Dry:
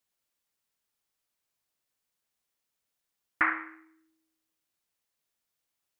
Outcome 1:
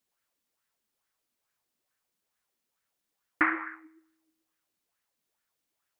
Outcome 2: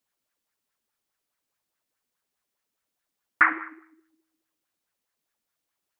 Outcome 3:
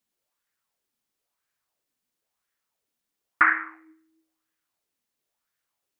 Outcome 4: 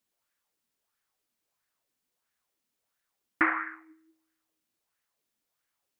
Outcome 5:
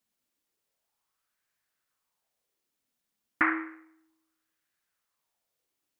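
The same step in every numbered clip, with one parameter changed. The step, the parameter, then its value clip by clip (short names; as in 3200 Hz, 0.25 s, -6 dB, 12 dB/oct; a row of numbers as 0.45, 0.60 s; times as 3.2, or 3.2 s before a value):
LFO bell, rate: 2.3, 4.8, 0.99, 1.5, 0.32 Hz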